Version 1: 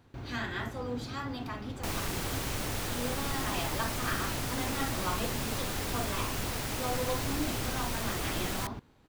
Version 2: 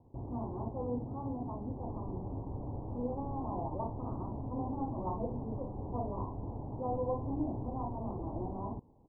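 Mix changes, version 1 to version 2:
background −9.5 dB
master: add Butterworth low-pass 1,000 Hz 72 dB per octave

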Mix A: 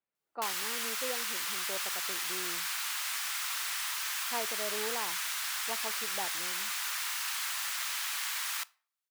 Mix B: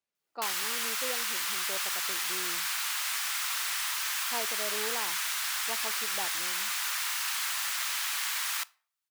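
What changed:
speech: remove low-pass filter 2,200 Hz 12 dB per octave
background +3.0 dB

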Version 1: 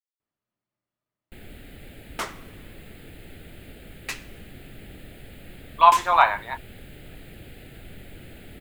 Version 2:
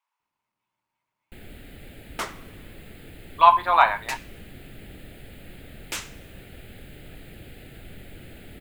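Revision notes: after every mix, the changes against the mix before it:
speech: entry −2.40 s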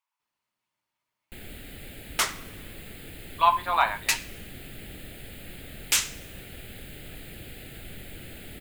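speech −7.0 dB
second sound: add tilt shelving filter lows −4.5 dB, about 850 Hz
master: add high-shelf EQ 2,700 Hz +8 dB

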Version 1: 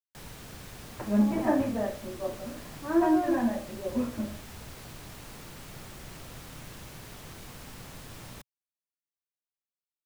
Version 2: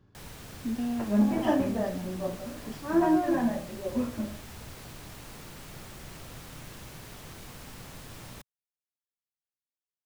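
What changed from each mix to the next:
speech: unmuted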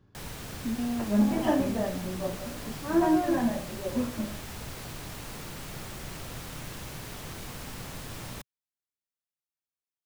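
first sound +5.0 dB

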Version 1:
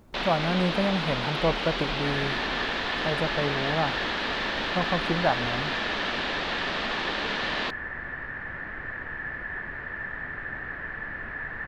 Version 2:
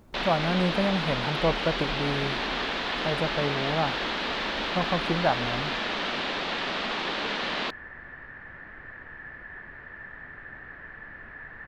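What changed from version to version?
second sound −8.0 dB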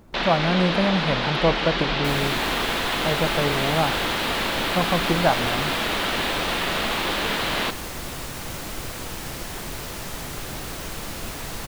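second sound: remove transistor ladder low-pass 1,800 Hz, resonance 90%
reverb: on, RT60 1.7 s

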